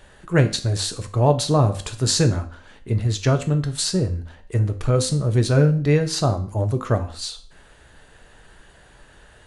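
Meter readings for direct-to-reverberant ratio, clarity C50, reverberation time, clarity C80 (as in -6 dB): 6.5 dB, 14.0 dB, 0.45 s, 18.0 dB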